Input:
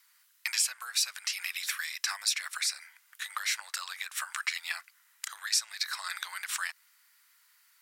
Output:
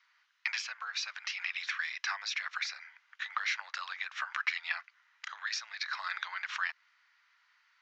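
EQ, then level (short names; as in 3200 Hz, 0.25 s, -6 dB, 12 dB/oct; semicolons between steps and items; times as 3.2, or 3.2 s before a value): steep low-pass 6600 Hz 72 dB/oct; three-band isolator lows -13 dB, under 430 Hz, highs -15 dB, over 3300 Hz; +2.0 dB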